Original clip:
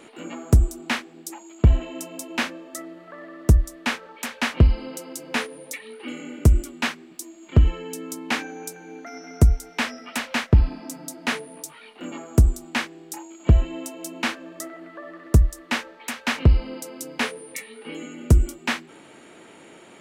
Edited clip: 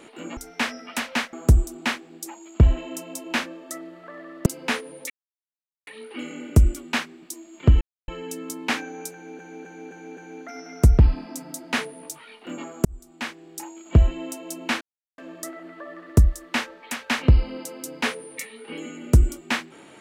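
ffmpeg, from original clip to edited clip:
ffmpeg -i in.wav -filter_complex "[0:a]asplit=13[link_01][link_02][link_03][link_04][link_05][link_06][link_07][link_08][link_09][link_10][link_11][link_12][link_13];[link_01]atrim=end=0.372[link_14];[link_02]atrim=start=9.558:end=10.522[link_15];[link_03]atrim=start=0.368:end=3.502[link_16];[link_04]atrim=start=5.118:end=5.76,asetpts=PTS-STARTPTS,afade=type=out:start_time=0.638:duration=0.004:curve=hsin,apad=pad_dur=0.77[link_17];[link_05]atrim=start=5.76:end=7.7,asetpts=PTS-STARTPTS,afade=type=in:duration=0.004:curve=hsin,afade=type=out:start_time=1.936:duration=0.004:curve=hsin,apad=pad_dur=0.27[link_18];[link_06]atrim=start=7.7:end=9.012,asetpts=PTS-STARTPTS,afade=type=in:duration=0.004:curve=hsin[link_19];[link_07]atrim=start=8.748:end=9.012[link_20];[link_08]atrim=start=8.748:end=9.012[link_21];[link_09]atrim=start=8.748:end=9.012[link_22];[link_10]atrim=start=8.748:end=9.562[link_23];[link_11]atrim=start=10.518:end=12.39,asetpts=PTS-STARTPTS,afade=type=out:start_time=1.868:duration=0.004:curve=hsin[link_24];[link_12]atrim=start=12.39:end=14.35,asetpts=PTS-STARTPTS,afade=type=in:duration=0.8,afade=type=out:start_time=1.956:duration=0.004:curve=hsin,apad=pad_dur=0.37[link_25];[link_13]atrim=start=14.35,asetpts=PTS-STARTPTS,afade=type=in:duration=0.004:curve=hsin[link_26];[link_14][link_15]acrossfade=duration=0.004:curve1=hsin:curve2=hsin[link_27];[link_27][link_16]acrossfade=duration=0.004:curve1=hsin:curve2=hsin[link_28];[link_17][link_18][link_19]concat=n=3:v=0:a=1[link_29];[link_28][link_29]acrossfade=duration=0.004:curve1=hsin:curve2=hsin[link_30];[link_30][link_20]acrossfade=duration=0.004:curve1=hsin:curve2=hsin[link_31];[link_31][link_21]acrossfade=duration=0.004:curve1=hsin:curve2=hsin[link_32];[link_32][link_22]acrossfade=duration=0.004:curve1=hsin:curve2=hsin[link_33];[link_33][link_23]acrossfade=duration=0.004:curve1=hsin:curve2=hsin[link_34];[link_24][link_25][link_26]concat=n=3:v=0:a=1[link_35];[link_34][link_35]acrossfade=duration=0.004:curve1=hsin:curve2=hsin" out.wav

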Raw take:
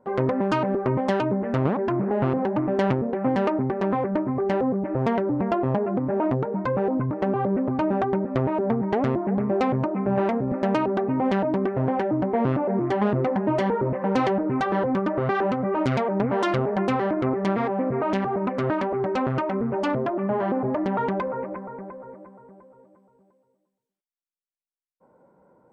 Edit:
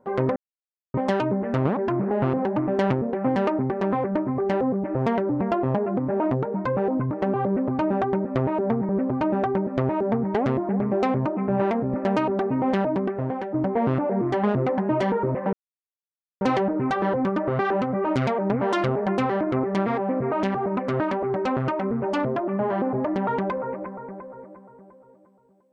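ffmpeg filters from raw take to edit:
ffmpeg -i in.wav -filter_complex "[0:a]asplit=6[link_01][link_02][link_03][link_04][link_05][link_06];[link_01]atrim=end=0.36,asetpts=PTS-STARTPTS,afade=type=out:start_time=0.356:duration=0.004:curve=hsin[link_07];[link_02]atrim=start=0.36:end=0.94,asetpts=PTS-STARTPTS,volume=0[link_08];[link_03]atrim=start=0.94:end=8.892,asetpts=PTS-STARTPTS,afade=type=in:duration=0.004:curve=hsin[link_09];[link_04]atrim=start=7.468:end=12.12,asetpts=PTS-STARTPTS,afade=type=out:start_time=3.992:duration=0.66:silence=0.398107[link_10];[link_05]atrim=start=12.12:end=14.11,asetpts=PTS-STARTPTS,afade=type=in:duration=0.004:curve=hsin:silence=0.398107,afade=type=out:start_time=1.986:duration=0.004:curve=hsin,apad=pad_dur=0.88[link_11];[link_06]atrim=start=14.11,asetpts=PTS-STARTPTS,afade=type=in:duration=0.004:curve=hsin[link_12];[link_07][link_08][link_09]concat=n=3:v=0:a=1[link_13];[link_10][link_11][link_12]concat=n=3:v=0:a=1[link_14];[link_13][link_14]acrossfade=duration=0.004:curve1=hsin:curve2=hsin" out.wav

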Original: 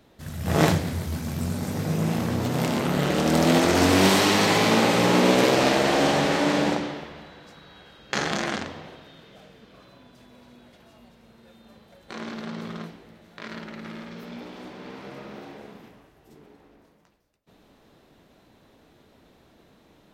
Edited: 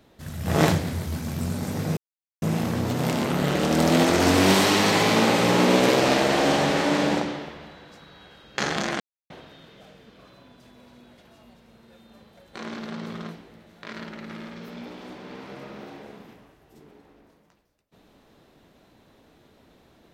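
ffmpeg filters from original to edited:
ffmpeg -i in.wav -filter_complex "[0:a]asplit=4[link_01][link_02][link_03][link_04];[link_01]atrim=end=1.97,asetpts=PTS-STARTPTS,afade=type=out:start_time=1.966:duration=0.004:curve=hsin,apad=pad_dur=0.45[link_05];[link_02]atrim=start=1.97:end=8.55,asetpts=PTS-STARTPTS,afade=type=in:duration=0.004:curve=hsin,afade=type=out:start_time=6.576:duration=0.004:curve=hsin[link_06];[link_03]atrim=start=8.55:end=8.85,asetpts=PTS-STARTPTS,volume=0[link_07];[link_04]atrim=start=8.85,asetpts=PTS-STARTPTS,afade=type=in:duration=0.004:curve=hsin[link_08];[link_05][link_06][link_07][link_08]concat=n=4:v=0:a=1" out.wav

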